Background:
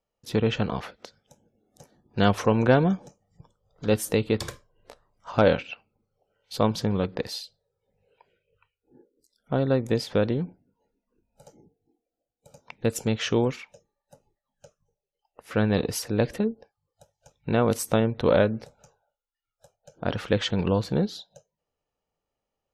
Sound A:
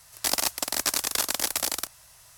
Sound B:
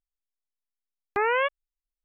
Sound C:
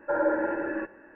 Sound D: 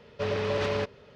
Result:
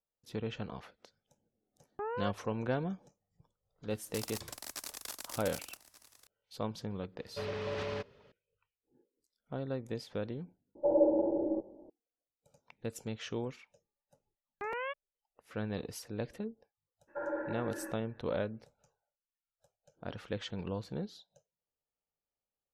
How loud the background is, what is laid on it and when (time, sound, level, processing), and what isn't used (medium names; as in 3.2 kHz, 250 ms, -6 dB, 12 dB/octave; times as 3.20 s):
background -14.5 dB
0.83 s: add B -11 dB + boxcar filter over 20 samples
3.90 s: add A -17.5 dB + delay 1182 ms -17.5 dB
7.17 s: add D -9 dB
10.75 s: replace with C -0.5 dB + steep low-pass 780 Hz 48 dB/octave
13.45 s: add B -14 dB + crackling interface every 0.89 s, samples 256, repeat, from 0.38 s
17.07 s: add C -12 dB, fades 0.02 s